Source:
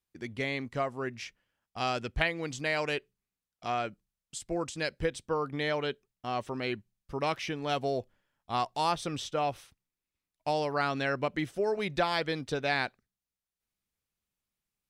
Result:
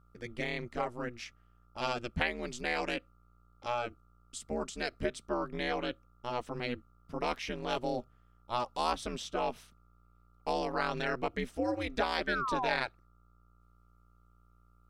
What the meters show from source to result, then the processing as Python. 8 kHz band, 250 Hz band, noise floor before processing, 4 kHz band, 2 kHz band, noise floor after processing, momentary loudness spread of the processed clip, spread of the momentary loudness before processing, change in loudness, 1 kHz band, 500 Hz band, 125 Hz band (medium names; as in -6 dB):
-3.0 dB, -2.0 dB, under -85 dBFS, -3.0 dB, -2.5 dB, -64 dBFS, 10 LU, 10 LU, -3.0 dB, -2.5 dB, -3.5 dB, -5.5 dB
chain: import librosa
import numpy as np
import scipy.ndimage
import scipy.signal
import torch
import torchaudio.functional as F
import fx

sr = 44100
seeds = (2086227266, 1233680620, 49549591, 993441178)

y = fx.dmg_buzz(x, sr, base_hz=60.0, harmonics=21, level_db=-57.0, tilt_db=-2, odd_only=False)
y = fx.spec_paint(y, sr, seeds[0], shape='fall', start_s=12.27, length_s=0.49, low_hz=670.0, high_hz=1700.0, level_db=-31.0)
y = y * np.sin(2.0 * np.pi * 120.0 * np.arange(len(y)) / sr)